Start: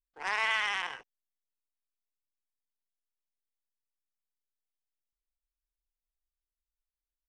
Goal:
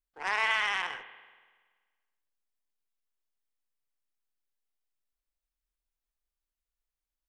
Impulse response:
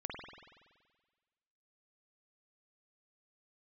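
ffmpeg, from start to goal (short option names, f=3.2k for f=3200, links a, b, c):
-filter_complex "[0:a]asplit=2[a][b];[1:a]atrim=start_sample=2205,lowpass=4.1k[c];[b][c]afir=irnorm=-1:irlink=0,volume=-9dB[d];[a][d]amix=inputs=2:normalize=0"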